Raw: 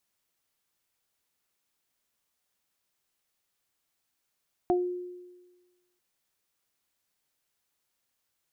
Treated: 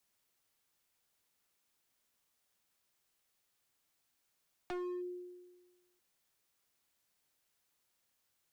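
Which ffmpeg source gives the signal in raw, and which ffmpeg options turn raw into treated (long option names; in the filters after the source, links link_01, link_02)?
-f lavfi -i "aevalsrc='0.0891*pow(10,-3*t/1.3)*sin(2*PI*358*t)+0.0794*pow(10,-3*t/0.2)*sin(2*PI*716*t)':duration=1.29:sample_rate=44100"
-filter_complex "[0:a]acrossover=split=120|280|660[link_01][link_02][link_03][link_04];[link_03]acompressor=threshold=-42dB:ratio=6[link_05];[link_01][link_02][link_05][link_04]amix=inputs=4:normalize=0,asoftclip=type=hard:threshold=-38dB"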